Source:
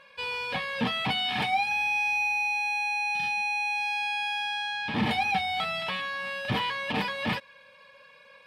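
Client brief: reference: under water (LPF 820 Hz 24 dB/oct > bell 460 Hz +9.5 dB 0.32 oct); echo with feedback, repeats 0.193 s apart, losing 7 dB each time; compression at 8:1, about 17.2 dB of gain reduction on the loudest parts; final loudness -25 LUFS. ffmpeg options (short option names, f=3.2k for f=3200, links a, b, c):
-af "acompressor=threshold=-41dB:ratio=8,lowpass=f=820:w=0.5412,lowpass=f=820:w=1.3066,equalizer=f=460:t=o:w=0.32:g=9.5,aecho=1:1:193|386|579|772|965:0.447|0.201|0.0905|0.0407|0.0183,volume=23dB"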